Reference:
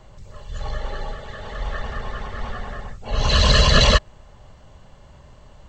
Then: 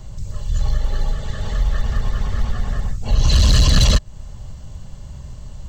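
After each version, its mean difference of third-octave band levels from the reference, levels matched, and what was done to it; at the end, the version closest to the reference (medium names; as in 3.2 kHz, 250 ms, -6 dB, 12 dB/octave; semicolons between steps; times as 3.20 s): 6.0 dB: tone controls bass +14 dB, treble +14 dB; short-mantissa float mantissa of 6-bit; compression 2:1, threshold -16 dBFS, peak gain reduction 8 dB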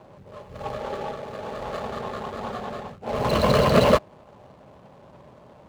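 4.5 dB: median filter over 25 samples; high-pass 200 Hz 12 dB/octave; treble shelf 4.7 kHz -8 dB; trim +6 dB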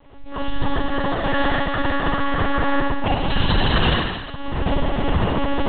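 12.0 dB: recorder AGC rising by 47 dB/s; on a send: flutter echo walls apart 9.9 m, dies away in 1.2 s; on the sum: monotone LPC vocoder at 8 kHz 280 Hz; trim -5.5 dB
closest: second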